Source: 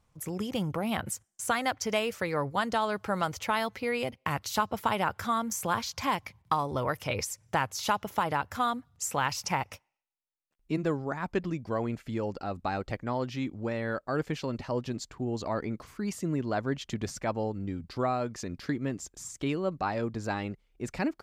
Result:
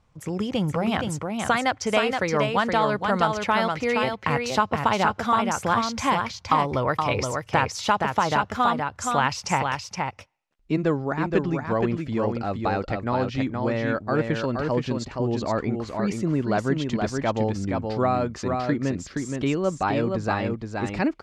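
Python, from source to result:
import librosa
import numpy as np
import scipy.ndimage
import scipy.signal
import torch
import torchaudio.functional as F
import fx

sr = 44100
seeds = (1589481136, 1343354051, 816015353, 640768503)

y = fx.air_absorb(x, sr, metres=75.0)
y = y + 10.0 ** (-4.5 / 20.0) * np.pad(y, (int(471 * sr / 1000.0), 0))[:len(y)]
y = F.gain(torch.from_numpy(y), 6.5).numpy()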